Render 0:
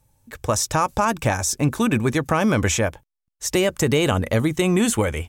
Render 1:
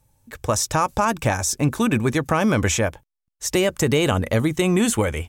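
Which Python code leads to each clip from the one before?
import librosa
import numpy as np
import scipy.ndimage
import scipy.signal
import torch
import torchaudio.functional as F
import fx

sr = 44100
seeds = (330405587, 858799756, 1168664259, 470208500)

y = x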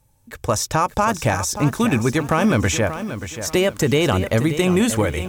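y = np.clip(10.0 ** (9.5 / 20.0) * x, -1.0, 1.0) / 10.0 ** (9.5 / 20.0)
y = fx.dynamic_eq(y, sr, hz=8600.0, q=1.1, threshold_db=-35.0, ratio=4.0, max_db=-4)
y = fx.echo_crushed(y, sr, ms=582, feedback_pct=35, bits=7, wet_db=-10.5)
y = y * 10.0 ** (1.5 / 20.0)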